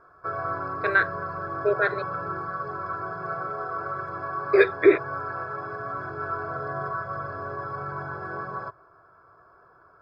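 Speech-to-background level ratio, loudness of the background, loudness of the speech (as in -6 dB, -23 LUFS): 9.0 dB, -32.0 LUFS, -23.0 LUFS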